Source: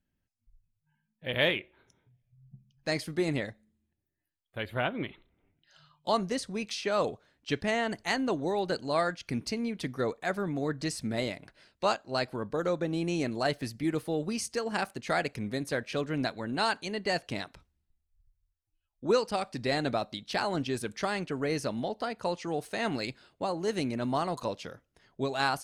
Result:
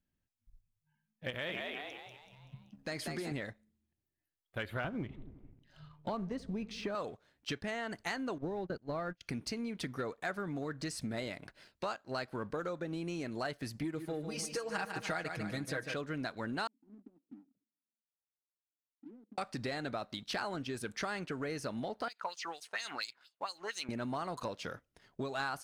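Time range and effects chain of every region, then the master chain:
0:01.30–0:03.32: downward compressor 3 to 1, threshold −37 dBFS + echo with shifted repeats 190 ms, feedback 50%, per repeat +70 Hz, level −4.5 dB
0:04.84–0:06.95: RIAA equalisation playback + notch filter 1,400 Hz, Q 19 + feedback echo with a low-pass in the loop 86 ms, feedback 65%, low-pass 890 Hz, level −21 dB
0:08.38–0:09.21: noise gate −35 dBFS, range −18 dB + linear-phase brick-wall low-pass 7,000 Hz + spectral tilt −3.5 dB per octave
0:13.81–0:15.94: comb filter 6.3 ms, depth 99% + repeating echo 147 ms, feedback 37%, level −10 dB
0:16.67–0:19.38: downward compressor 2.5 to 1, threshold −46 dBFS + flanger swept by the level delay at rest 11.9 ms, full sweep at −41.5 dBFS + flat-topped band-pass 260 Hz, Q 3.3
0:22.08–0:23.89: high-shelf EQ 3,600 Hz +9.5 dB + auto-filter band-pass sine 4.3 Hz 910–6,400 Hz
whole clip: downward compressor 12 to 1, threshold −36 dBFS; leveller curve on the samples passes 1; dynamic equaliser 1,400 Hz, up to +6 dB, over −53 dBFS, Q 1.8; level −2.5 dB

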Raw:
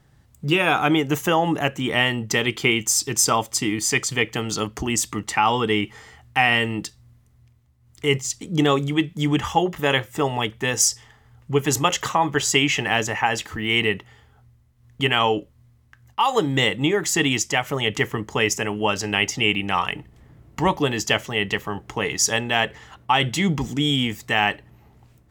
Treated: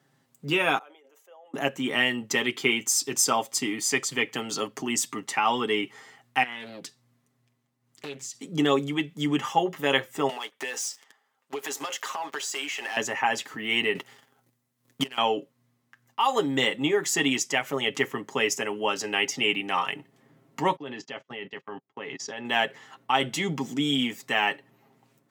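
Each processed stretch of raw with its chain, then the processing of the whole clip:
0:00.78–0:01.54: four-pole ladder high-pass 460 Hz, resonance 60% + gate with flip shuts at −31 dBFS, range −24 dB + level that may fall only so fast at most 55 dB per second
0:06.43–0:08.35: downward compressor 12 to 1, threshold −28 dBFS + highs frequency-modulated by the lows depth 0.74 ms
0:10.29–0:12.97: high-pass filter 530 Hz + leveller curve on the samples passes 3 + downward compressor 10 to 1, threshold −26 dBFS
0:13.95–0:15.18: gate with flip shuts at −12 dBFS, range −25 dB + high-shelf EQ 5,200 Hz +8.5 dB + leveller curve on the samples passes 2
0:20.76–0:22.45: noise gate −32 dBFS, range −25 dB + high-frequency loss of the air 170 metres + output level in coarse steps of 16 dB
whole clip: high-pass filter 180 Hz 24 dB per octave; comb filter 7.5 ms, depth 51%; level −5 dB

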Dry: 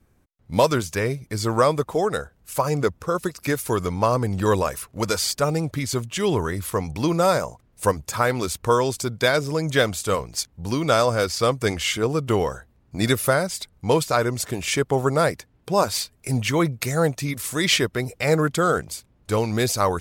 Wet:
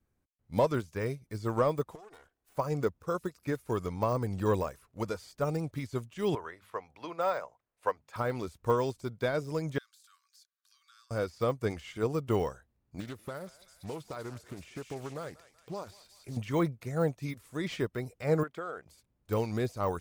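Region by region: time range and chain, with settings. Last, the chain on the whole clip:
0:01.95–0:02.56: lower of the sound and its delayed copy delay 2.7 ms + low-shelf EQ 200 Hz −11.5 dB + downward compressor 5 to 1, threshold −34 dBFS
0:06.35–0:08.16: three-way crossover with the lows and the highs turned down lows −17 dB, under 460 Hz, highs −17 dB, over 3,500 Hz + mains-hum notches 50/100/150/200/250 Hz
0:09.78–0:11.11: high-shelf EQ 7,700 Hz +9 dB + downward compressor 10 to 1, threshold −30 dBFS + Chebyshev high-pass with heavy ripple 1,100 Hz, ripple 9 dB
0:13.00–0:16.37: downward compressor, threshold −24 dBFS + feedback echo with a high-pass in the loop 190 ms, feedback 63%, high-pass 1,000 Hz, level −10.5 dB + highs frequency-modulated by the lows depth 0.37 ms
0:18.43–0:18.86: bass and treble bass −14 dB, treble −14 dB + downward compressor 4 to 1, threshold −24 dBFS
whole clip: de-essing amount 90%; expander for the loud parts 1.5 to 1, over −38 dBFS; level −5.5 dB

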